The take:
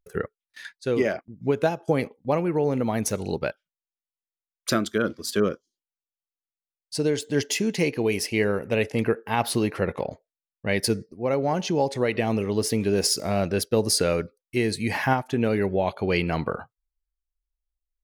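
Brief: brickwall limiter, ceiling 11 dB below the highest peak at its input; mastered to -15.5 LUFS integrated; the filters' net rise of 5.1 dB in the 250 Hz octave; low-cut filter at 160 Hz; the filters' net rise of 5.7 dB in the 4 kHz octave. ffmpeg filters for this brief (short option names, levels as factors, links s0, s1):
-af "highpass=160,equalizer=f=250:t=o:g=7.5,equalizer=f=4000:t=o:g=7.5,volume=3.16,alimiter=limit=0.596:level=0:latency=1"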